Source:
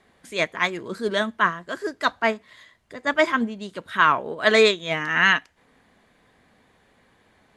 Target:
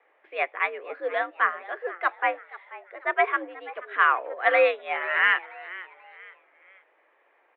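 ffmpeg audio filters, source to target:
ffmpeg -i in.wav -filter_complex "[0:a]asplit=4[link_01][link_02][link_03][link_04];[link_02]adelay=484,afreqshift=99,volume=-18dB[link_05];[link_03]adelay=968,afreqshift=198,volume=-26.2dB[link_06];[link_04]adelay=1452,afreqshift=297,volume=-34.4dB[link_07];[link_01][link_05][link_06][link_07]amix=inputs=4:normalize=0,highpass=frequency=340:width_type=q:width=0.5412,highpass=frequency=340:width_type=q:width=1.307,lowpass=frequency=2600:width_type=q:width=0.5176,lowpass=frequency=2600:width_type=q:width=0.7071,lowpass=frequency=2600:width_type=q:width=1.932,afreqshift=79,volume=-2.5dB" out.wav

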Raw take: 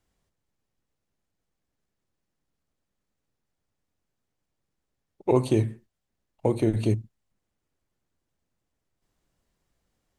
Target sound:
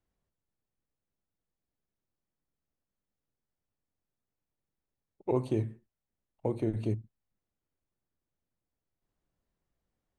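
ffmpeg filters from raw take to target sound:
ffmpeg -i in.wav -af "highshelf=frequency=2800:gain=-9.5,volume=-7.5dB" out.wav

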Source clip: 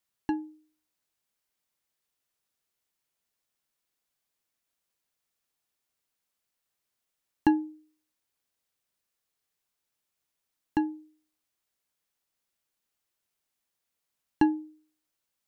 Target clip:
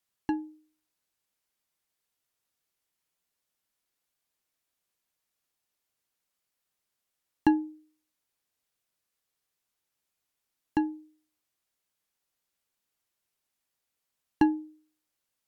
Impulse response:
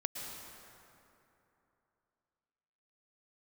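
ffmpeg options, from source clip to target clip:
-ar 48000 -c:a libopus -b:a 64k

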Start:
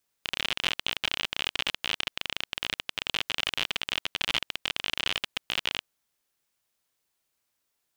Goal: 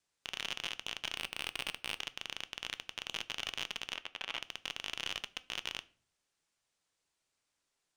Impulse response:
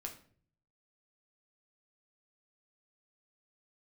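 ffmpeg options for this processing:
-filter_complex "[0:a]lowpass=frequency=9100:width=0.5412,lowpass=frequency=9100:width=1.3066,asettb=1/sr,asplit=3[link_01][link_02][link_03];[link_01]atrim=end=1.154[link_04];[link_02]atrim=start=1.15:end=2,asetpts=PTS-STARTPTS,afade=type=in:duration=0.004:curve=qsin,afade=type=out:start_time=0.846:duration=0.004:curve=qsin,adynamicsmooth=sensitivity=3.5:basefreq=1800[link_05];[link_03]atrim=start=1.996[link_06];[link_04][link_05]acrossfade=duration=0.004:curve1=hsin:curve2=qsin[link_07];[link_07][link_06]acrossfade=duration=0.004:curve1=qsin:curve2=hsin,alimiter=limit=-14dB:level=0:latency=1:release=141,aeval=exprs='clip(val(0),-1,0.0355)':channel_layout=same,asplit=3[link_08][link_09][link_10];[link_08]afade=type=out:start_time=3.93:duration=0.02[link_11];[link_09]bass=frequency=250:gain=-9,treble=frequency=4000:gain=-11,afade=type=in:start_time=3.93:duration=0.02,afade=type=out:start_time=4.38:duration=0.02[link_12];[link_10]afade=type=in:start_time=4.38:duration=0.02[link_13];[link_11][link_12][link_13]amix=inputs=3:normalize=0,asplit=2[link_14][link_15];[1:a]atrim=start_sample=2205,asetrate=48510,aresample=44100[link_16];[link_15][link_16]afir=irnorm=-1:irlink=0,volume=-4dB[link_17];[link_14][link_17]amix=inputs=2:normalize=0,volume=-4.5dB"

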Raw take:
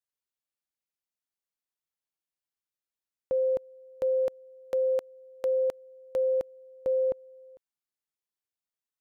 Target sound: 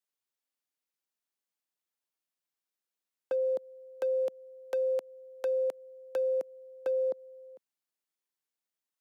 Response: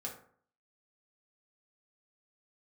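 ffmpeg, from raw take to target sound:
-filter_complex "[0:a]acrossover=split=250|920[link_01][link_02][link_03];[link_01]acompressor=threshold=-58dB:ratio=4[link_04];[link_02]acompressor=threshold=-30dB:ratio=4[link_05];[link_03]acompressor=threshold=-47dB:ratio=4[link_06];[link_04][link_05][link_06]amix=inputs=3:normalize=0,highpass=frequency=180:width=0.5412,highpass=frequency=180:width=1.3066,asoftclip=type=hard:threshold=-26.5dB,volume=1dB"

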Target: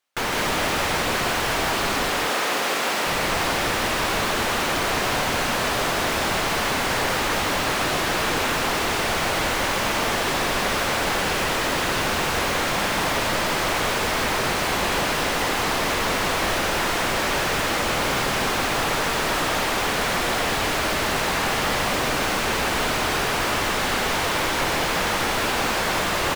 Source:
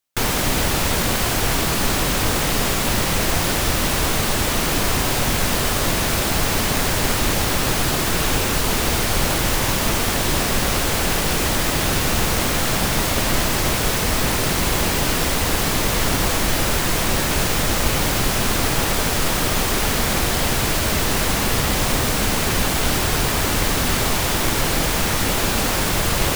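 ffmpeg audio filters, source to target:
ffmpeg -i in.wav -filter_complex "[0:a]asplit=2[link_01][link_02];[link_02]highpass=frequency=720:poles=1,volume=24dB,asoftclip=type=tanh:threshold=-5dB[link_03];[link_01][link_03]amix=inputs=2:normalize=0,lowpass=frequency=2000:poles=1,volume=-6dB,asettb=1/sr,asplit=3[link_04][link_05][link_06];[link_04]atrim=end=2.094[link_07];[link_05]atrim=start=2.09:end=3.06,asetpts=PTS-STARTPTS,afade=type=in:duration=0.004:curve=qsin,afade=type=out:start_time=0.966:duration=0.004:curve=qsin,highpass=280[link_08];[link_06]atrim=start=3.056[link_09];[link_07][link_08]acrossfade=duration=0.004:curve1=hsin:curve2=qsin[link_10];[link_10][link_09]acrossfade=duration=0.004:curve1=qsin:curve2=hsin,aecho=1:1:160.3|209.9:0.631|0.355,volume=-8.5dB" out.wav

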